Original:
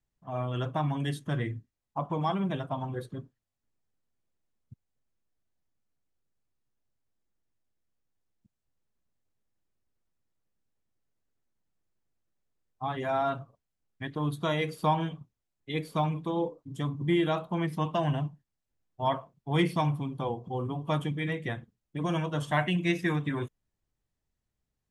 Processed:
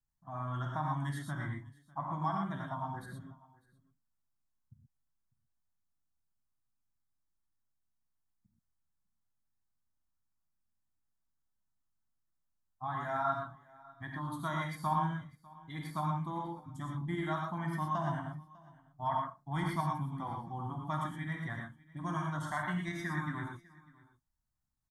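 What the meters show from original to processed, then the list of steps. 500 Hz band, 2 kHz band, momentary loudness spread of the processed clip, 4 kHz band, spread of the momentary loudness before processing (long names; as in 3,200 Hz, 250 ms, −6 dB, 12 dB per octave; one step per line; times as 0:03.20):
−11.5 dB, −4.5 dB, 12 LU, −12.0 dB, 11 LU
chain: dynamic equaliser 1,800 Hz, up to +6 dB, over −47 dBFS, Q 0.89
in parallel at 0 dB: output level in coarse steps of 23 dB
on the sum: brickwall limiter −14 dBFS, peak gain reduction 10 dB
phaser with its sweep stopped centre 1,100 Hz, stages 4
on a send: single-tap delay 599 ms −23 dB
on the sum: reverb whose tail is shaped and stops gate 140 ms rising, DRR 0 dB
level −7.5 dB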